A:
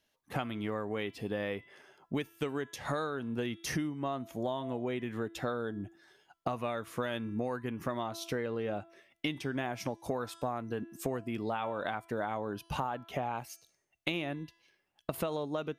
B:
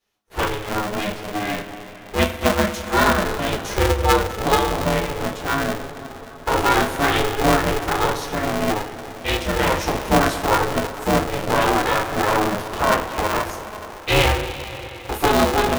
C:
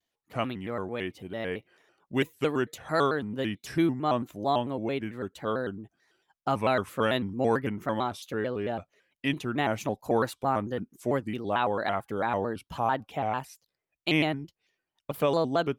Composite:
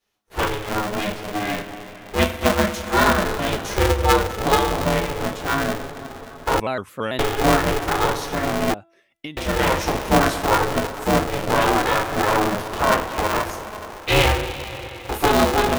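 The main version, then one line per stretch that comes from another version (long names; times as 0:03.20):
B
0:06.60–0:07.19: punch in from C
0:08.74–0:09.37: punch in from A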